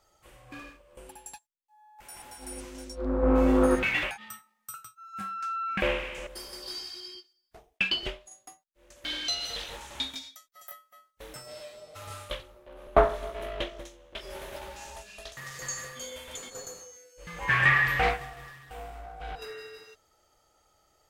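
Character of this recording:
background noise floor −73 dBFS
spectral slope −4.0 dB per octave

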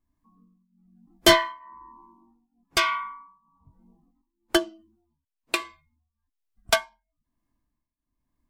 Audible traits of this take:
tremolo triangle 1.1 Hz, depth 90%

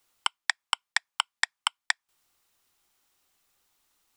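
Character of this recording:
background noise floor −88 dBFS
spectral slope +1.5 dB per octave

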